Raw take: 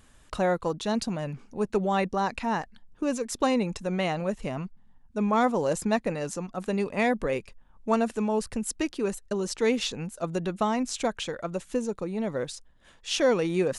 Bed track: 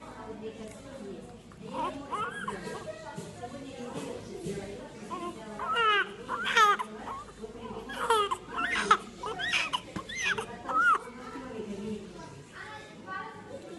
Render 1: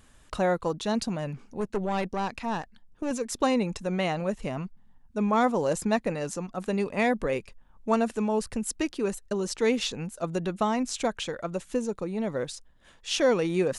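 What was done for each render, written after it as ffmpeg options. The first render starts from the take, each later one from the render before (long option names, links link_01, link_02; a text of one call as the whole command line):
ffmpeg -i in.wav -filter_complex "[0:a]asettb=1/sr,asplit=3[link_01][link_02][link_03];[link_01]atrim=end=1.604[link_04];[link_02]atrim=start=1.6:end=3.11,asetpts=PTS-STARTPTS,afade=type=in:duration=0.004:curve=qsin,afade=type=out:start_time=1.506:duration=0.004:curve=qsin,aeval=exprs='(tanh(12.6*val(0)+0.6)-tanh(0.6))/12.6':channel_layout=same[link_05];[link_03]atrim=start=3.106[link_06];[link_04][link_05]acrossfade=duration=0.004:curve1=hsin:curve2=qsin[link_07];[link_07][link_06]acrossfade=duration=0.004:curve1=qsin:curve2=hsin" out.wav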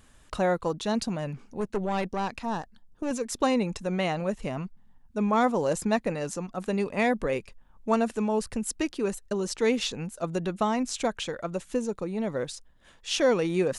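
ffmpeg -i in.wav -filter_complex "[0:a]asettb=1/sr,asplit=3[link_01][link_02][link_03];[link_01]atrim=end=2.404[link_04];[link_02]atrim=start=2.4:end=3.03,asetpts=PTS-STARTPTS,afade=type=in:duration=0.004:curve=qsin,afade=type=out:start_time=0.626:duration=0.004:curve=qsin,equalizer=frequency=2300:width=2.1:gain=-8.5[link_05];[link_03]atrim=start=3.026[link_06];[link_04][link_05]acrossfade=duration=0.004:curve1=hsin:curve2=qsin[link_07];[link_07][link_06]acrossfade=duration=0.004:curve1=qsin:curve2=hsin" out.wav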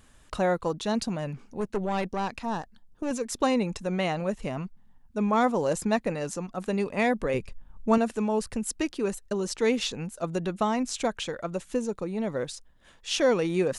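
ffmpeg -i in.wav -filter_complex "[0:a]asettb=1/sr,asplit=3[link_01][link_02][link_03];[link_01]atrim=end=7.344[link_04];[link_02]atrim=start=7.34:end=7.98,asetpts=PTS-STARTPTS,afade=type=in:duration=0.004:curve=qsin,afade=type=out:start_time=0.636:duration=0.004:curve=qsin,lowshelf=frequency=210:gain=10.5[link_05];[link_03]atrim=start=7.976[link_06];[link_04][link_05]acrossfade=duration=0.004:curve1=hsin:curve2=qsin[link_07];[link_07][link_06]acrossfade=duration=0.004:curve1=qsin:curve2=hsin" out.wav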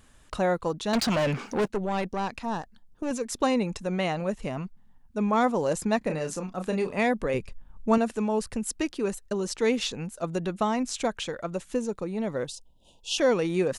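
ffmpeg -i in.wav -filter_complex "[0:a]asettb=1/sr,asplit=3[link_01][link_02][link_03];[link_01]atrim=end=0.934[link_04];[link_02]atrim=start=0.93:end=1.68,asetpts=PTS-STARTPTS,afade=type=in:duration=0.004:curve=qsin,afade=type=out:start_time=0.746:duration=0.004:curve=qsin,asplit=2[link_05][link_06];[link_06]highpass=frequency=720:poles=1,volume=29dB,asoftclip=type=tanh:threshold=-17dB[link_07];[link_05][link_07]amix=inputs=2:normalize=0,lowpass=frequency=4300:poles=1,volume=-6dB[link_08];[link_03]atrim=start=1.676[link_09];[link_04][link_08]acrossfade=duration=0.004:curve1=hsin:curve2=qsin[link_10];[link_10][link_09]acrossfade=duration=0.004:curve1=qsin:curve2=hsin,asplit=3[link_11][link_12][link_13];[link_11]afade=type=out:start_time=6.01:duration=0.02[link_14];[link_12]asplit=2[link_15][link_16];[link_16]adelay=32,volume=-7dB[link_17];[link_15][link_17]amix=inputs=2:normalize=0,afade=type=in:start_time=6.01:duration=0.02,afade=type=out:start_time=6.97:duration=0.02[link_18];[link_13]afade=type=in:start_time=6.97:duration=0.02[link_19];[link_14][link_18][link_19]amix=inputs=3:normalize=0,asplit=3[link_20][link_21][link_22];[link_20]afade=type=out:start_time=12.46:duration=0.02[link_23];[link_21]asuperstop=centerf=1600:order=20:qfactor=1,afade=type=in:start_time=12.46:duration=0.02,afade=type=out:start_time=13.17:duration=0.02[link_24];[link_22]afade=type=in:start_time=13.17:duration=0.02[link_25];[link_23][link_24][link_25]amix=inputs=3:normalize=0" out.wav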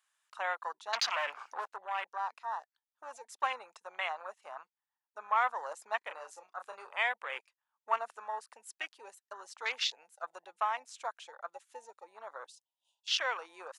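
ffmpeg -i in.wav -af "afwtdn=0.0178,highpass=frequency=910:width=0.5412,highpass=frequency=910:width=1.3066" out.wav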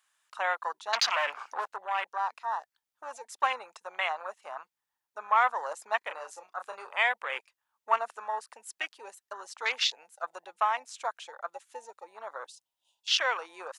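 ffmpeg -i in.wav -af "acontrast=30" out.wav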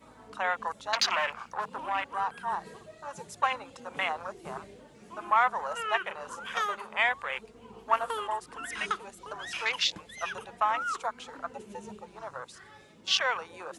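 ffmpeg -i in.wav -i bed.wav -filter_complex "[1:a]volume=-9dB[link_01];[0:a][link_01]amix=inputs=2:normalize=0" out.wav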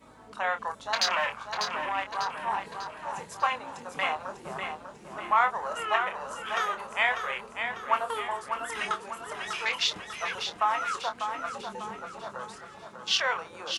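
ffmpeg -i in.wav -filter_complex "[0:a]asplit=2[link_01][link_02];[link_02]adelay=26,volume=-8dB[link_03];[link_01][link_03]amix=inputs=2:normalize=0,aecho=1:1:596|1192|1788|2384|2980:0.447|0.205|0.0945|0.0435|0.02" out.wav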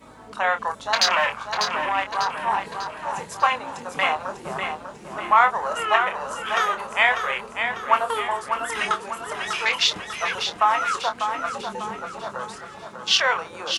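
ffmpeg -i in.wav -af "volume=7dB" out.wav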